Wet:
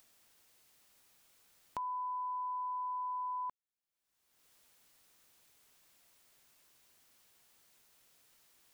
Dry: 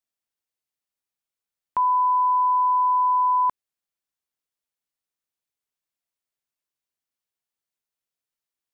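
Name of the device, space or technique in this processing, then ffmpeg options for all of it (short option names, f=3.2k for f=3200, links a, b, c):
upward and downward compression: -af "acompressor=mode=upward:threshold=-36dB:ratio=2.5,acompressor=threshold=-33dB:ratio=3,volume=-8dB"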